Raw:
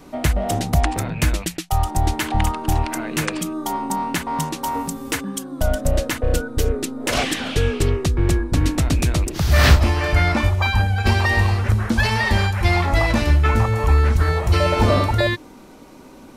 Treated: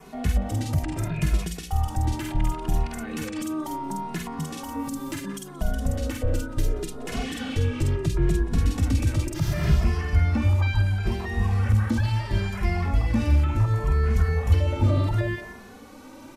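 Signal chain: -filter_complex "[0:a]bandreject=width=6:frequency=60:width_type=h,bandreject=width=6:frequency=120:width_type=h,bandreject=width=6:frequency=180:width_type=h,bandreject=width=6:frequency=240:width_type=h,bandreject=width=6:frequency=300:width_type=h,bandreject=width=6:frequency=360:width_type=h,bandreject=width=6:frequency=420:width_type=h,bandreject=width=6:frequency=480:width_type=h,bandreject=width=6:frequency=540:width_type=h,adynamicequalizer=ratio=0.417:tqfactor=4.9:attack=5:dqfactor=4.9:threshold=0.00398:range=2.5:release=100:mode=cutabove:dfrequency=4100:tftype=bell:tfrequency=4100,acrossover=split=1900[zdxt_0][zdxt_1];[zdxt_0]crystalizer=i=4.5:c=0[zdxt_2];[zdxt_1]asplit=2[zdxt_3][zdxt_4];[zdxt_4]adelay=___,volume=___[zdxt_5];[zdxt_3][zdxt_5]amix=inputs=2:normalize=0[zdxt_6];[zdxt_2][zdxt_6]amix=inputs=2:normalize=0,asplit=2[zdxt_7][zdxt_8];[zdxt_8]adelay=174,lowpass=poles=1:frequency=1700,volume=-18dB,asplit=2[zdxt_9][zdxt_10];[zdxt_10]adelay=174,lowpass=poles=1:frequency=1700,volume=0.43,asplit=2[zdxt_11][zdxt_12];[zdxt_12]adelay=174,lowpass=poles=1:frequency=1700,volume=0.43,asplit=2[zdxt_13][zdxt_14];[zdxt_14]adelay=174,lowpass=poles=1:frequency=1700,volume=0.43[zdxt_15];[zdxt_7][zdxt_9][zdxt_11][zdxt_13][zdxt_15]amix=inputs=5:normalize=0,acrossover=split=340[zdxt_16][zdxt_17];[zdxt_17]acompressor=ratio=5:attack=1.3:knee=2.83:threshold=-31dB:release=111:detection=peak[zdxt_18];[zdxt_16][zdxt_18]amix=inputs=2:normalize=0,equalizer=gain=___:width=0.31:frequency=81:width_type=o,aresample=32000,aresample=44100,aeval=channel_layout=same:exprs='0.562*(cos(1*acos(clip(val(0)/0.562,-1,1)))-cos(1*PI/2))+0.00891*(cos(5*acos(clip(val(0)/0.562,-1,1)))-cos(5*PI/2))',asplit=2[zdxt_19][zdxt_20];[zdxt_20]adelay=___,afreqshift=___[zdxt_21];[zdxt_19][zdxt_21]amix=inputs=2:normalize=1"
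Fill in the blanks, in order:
48, -2dB, -2.5, 2.4, 0.71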